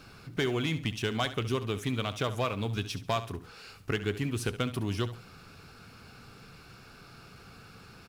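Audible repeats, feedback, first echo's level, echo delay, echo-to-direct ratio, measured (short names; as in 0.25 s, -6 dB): 2, 26%, -13.5 dB, 69 ms, -13.0 dB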